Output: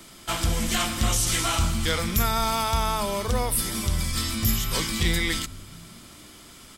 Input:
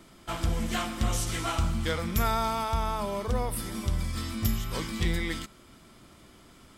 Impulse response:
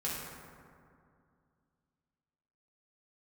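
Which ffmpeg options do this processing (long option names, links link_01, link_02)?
-filter_complex "[0:a]highshelf=frequency=2300:gain=11,acrossover=split=330[link_01][link_02];[link_01]asplit=6[link_03][link_04][link_05][link_06][link_07][link_08];[link_04]adelay=223,afreqshift=-70,volume=-12.5dB[link_09];[link_05]adelay=446,afreqshift=-140,volume=-18.3dB[link_10];[link_06]adelay=669,afreqshift=-210,volume=-24.2dB[link_11];[link_07]adelay=892,afreqshift=-280,volume=-30dB[link_12];[link_08]adelay=1115,afreqshift=-350,volume=-35.9dB[link_13];[link_03][link_09][link_10][link_11][link_12][link_13]amix=inputs=6:normalize=0[link_14];[link_02]alimiter=limit=-18dB:level=0:latency=1:release=25[link_15];[link_14][link_15]amix=inputs=2:normalize=0,volume=3dB"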